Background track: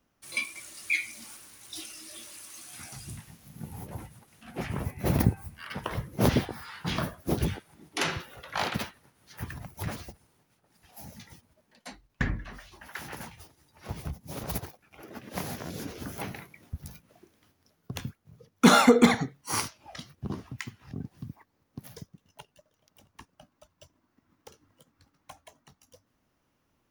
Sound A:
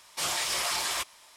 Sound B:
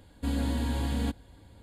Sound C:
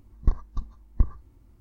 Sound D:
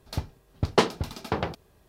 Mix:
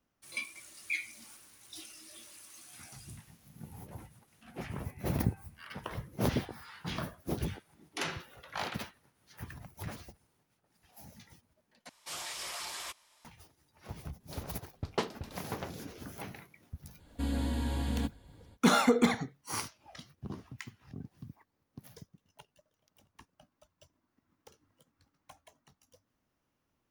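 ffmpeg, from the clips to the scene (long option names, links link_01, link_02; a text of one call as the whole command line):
ffmpeg -i bed.wav -i cue0.wav -i cue1.wav -i cue2.wav -i cue3.wav -filter_complex "[0:a]volume=-7dB,asplit=2[link_01][link_02];[link_01]atrim=end=11.894[link_03];[1:a]atrim=end=1.36,asetpts=PTS-STARTPTS,volume=-11dB[link_04];[link_02]atrim=start=13.246[link_05];[4:a]atrim=end=1.88,asetpts=PTS-STARTPTS,volume=-12dB,afade=type=in:duration=0.004:curve=hsin,afade=type=out:start_time=1.876:duration=0.004:curve=hsin,adelay=14200[link_06];[2:a]atrim=end=1.62,asetpts=PTS-STARTPTS,volume=-3.5dB,afade=type=in:duration=0.05,afade=type=out:start_time=1.57:duration=0.05,adelay=16960[link_07];[link_03][link_04]acrossfade=duration=0.004:curve1=hsin:curve2=hsin[link_08];[link_08][link_05]acrossfade=duration=0.004:curve1=hsin:curve2=hsin[link_09];[link_09][link_06][link_07]amix=inputs=3:normalize=0" out.wav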